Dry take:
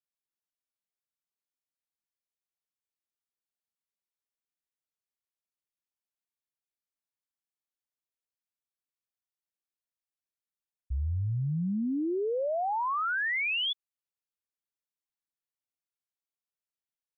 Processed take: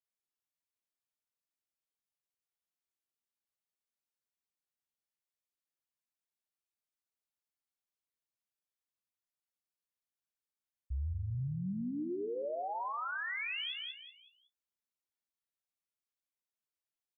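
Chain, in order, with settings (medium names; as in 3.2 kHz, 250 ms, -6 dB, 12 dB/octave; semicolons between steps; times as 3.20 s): flange 0.12 Hz, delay 9.1 ms, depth 8.4 ms, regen +44%; feedback delay 187 ms, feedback 33%, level -9.5 dB; peak limiter -32 dBFS, peak gain reduction 7 dB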